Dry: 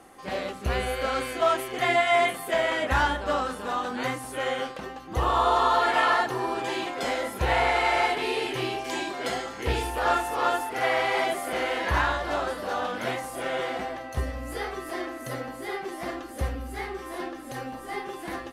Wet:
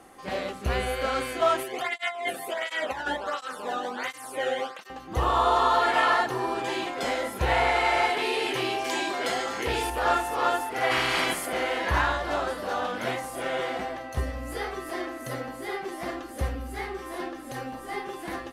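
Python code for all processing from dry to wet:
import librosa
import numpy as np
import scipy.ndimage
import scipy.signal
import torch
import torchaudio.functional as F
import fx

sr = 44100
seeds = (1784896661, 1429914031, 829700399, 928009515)

y = fx.chain(x, sr, fx.over_compress(threshold_db=-25.0, ratio=-0.5),
    fx.flanger_cancel(hz=1.4, depth_ms=1.0), at=(1.63, 4.9))
y = fx.chain(y, sr, fx.low_shelf(hz=190.0, db=-10.0),
    fx.env_flatten(amount_pct=50), at=(8.1, 9.9))
y = fx.spec_clip(y, sr, under_db=19, at=(10.9, 11.45), fade=0.02)
y = fx.notch(y, sr, hz=3700.0, q=18.0, at=(10.9, 11.45), fade=0.02)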